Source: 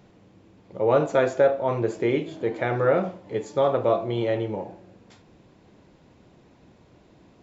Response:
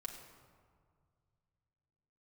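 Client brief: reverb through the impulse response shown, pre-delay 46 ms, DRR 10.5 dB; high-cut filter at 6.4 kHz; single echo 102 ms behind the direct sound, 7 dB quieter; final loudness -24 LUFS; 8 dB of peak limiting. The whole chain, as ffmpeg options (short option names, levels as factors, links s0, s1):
-filter_complex "[0:a]lowpass=6400,alimiter=limit=0.158:level=0:latency=1,aecho=1:1:102:0.447,asplit=2[s0][s1];[1:a]atrim=start_sample=2205,adelay=46[s2];[s1][s2]afir=irnorm=-1:irlink=0,volume=0.398[s3];[s0][s3]amix=inputs=2:normalize=0,volume=1.26"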